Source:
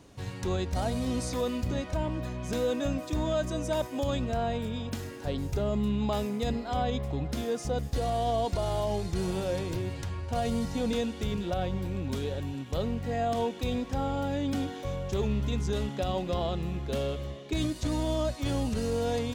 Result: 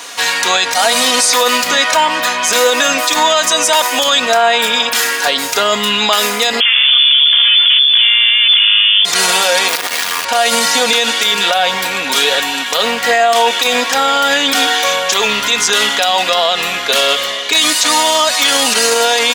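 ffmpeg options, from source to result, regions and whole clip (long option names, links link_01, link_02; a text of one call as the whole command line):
ffmpeg -i in.wav -filter_complex "[0:a]asettb=1/sr,asplit=3[link_01][link_02][link_03];[link_01]atrim=end=6.604[link_04];[link_02]atrim=start=6.6:end=9.05,asetpts=PTS-STARTPTS,afade=type=in:duration=0.004:curve=qsin,afade=type=out:start_time=2.446:duration=0.004:curve=qsin,aeval=exprs='max(val(0),0)':channel_layout=same,lowpass=frequency=3000:width_type=q:width=0.5098,lowpass=frequency=3000:width_type=q:width=0.6013,lowpass=frequency=3000:width_type=q:width=0.9,lowpass=frequency=3000:width_type=q:width=2.563,afreqshift=-3500[link_05];[link_03]atrim=start=9.046[link_06];[link_04][link_05]acrossfade=duration=0.004:curve1=hsin:curve2=qsin[link_07];[link_07][link_06]acrossfade=duration=0.004:curve1=qsin:curve2=hsin,asettb=1/sr,asplit=3[link_08][link_09][link_10];[link_08]atrim=end=9.684[link_11];[link_09]atrim=start=9.68:end=10.25,asetpts=PTS-STARTPTS,afade=type=in:duration=0.004:curve=qsin,afade=type=out:start_time=0.566:duration=0.004:curve=qsin,lowpass=6400,acrusher=bits=5:dc=4:mix=0:aa=0.000001[link_12];[link_10]atrim=start=10.246[link_13];[link_11][link_12]acrossfade=duration=0.004:curve1=hsin:curve2=qsin[link_14];[link_14][link_13]acrossfade=duration=0.004:curve1=qsin:curve2=hsin,highpass=1300,aecho=1:1:4.2:0.5,alimiter=level_in=34.5dB:limit=-1dB:release=50:level=0:latency=1,volume=-1dB" out.wav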